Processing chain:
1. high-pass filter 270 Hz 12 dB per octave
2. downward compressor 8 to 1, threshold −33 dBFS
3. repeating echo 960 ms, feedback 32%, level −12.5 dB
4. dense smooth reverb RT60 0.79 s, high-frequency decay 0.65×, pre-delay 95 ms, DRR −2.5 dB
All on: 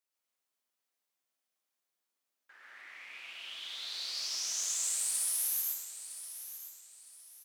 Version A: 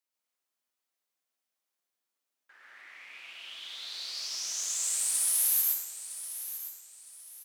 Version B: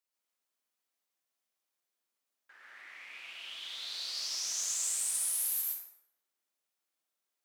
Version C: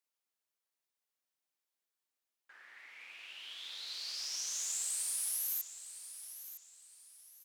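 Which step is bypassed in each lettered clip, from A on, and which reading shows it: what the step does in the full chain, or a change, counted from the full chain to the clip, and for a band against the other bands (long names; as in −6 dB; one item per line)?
2, average gain reduction 1.5 dB
3, change in momentary loudness spread −2 LU
4, change in integrated loudness −4.0 LU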